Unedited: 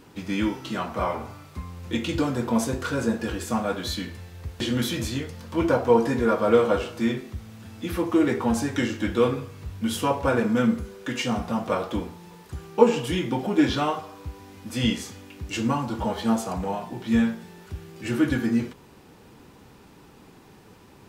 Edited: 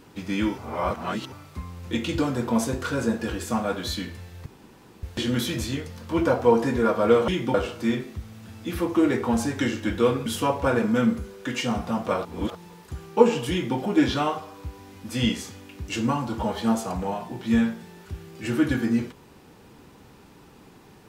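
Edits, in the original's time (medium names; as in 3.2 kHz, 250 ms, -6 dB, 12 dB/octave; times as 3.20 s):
0.58–1.32 s: reverse
4.46 s: insert room tone 0.57 s
9.43–9.87 s: delete
11.86–12.16 s: reverse
13.12–13.38 s: copy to 6.71 s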